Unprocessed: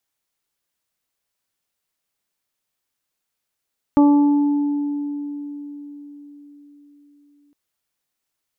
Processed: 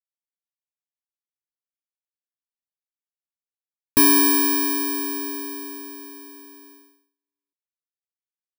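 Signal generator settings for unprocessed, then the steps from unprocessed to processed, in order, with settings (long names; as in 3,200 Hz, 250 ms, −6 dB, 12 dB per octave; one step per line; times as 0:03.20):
harmonic partials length 3.56 s, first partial 289 Hz, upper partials −12/−11/−19 dB, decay 4.65 s, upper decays 0.76/2.25/0.86 s, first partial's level −9 dB
samples in bit-reversed order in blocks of 64 samples
dynamic equaliser 390 Hz, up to −6 dB, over −31 dBFS
noise gate −49 dBFS, range −38 dB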